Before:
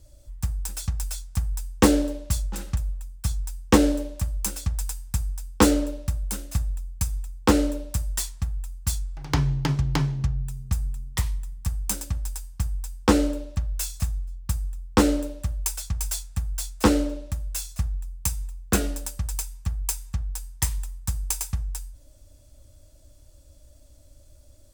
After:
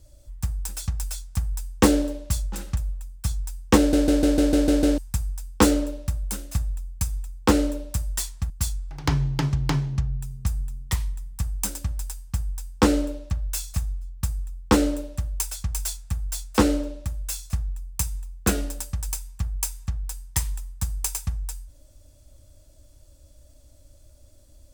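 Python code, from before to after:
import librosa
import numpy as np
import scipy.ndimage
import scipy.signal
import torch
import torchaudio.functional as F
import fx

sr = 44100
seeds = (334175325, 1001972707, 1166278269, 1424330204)

y = fx.edit(x, sr, fx.stutter_over(start_s=3.78, slice_s=0.15, count=8),
    fx.cut(start_s=8.5, length_s=0.26), tone=tone)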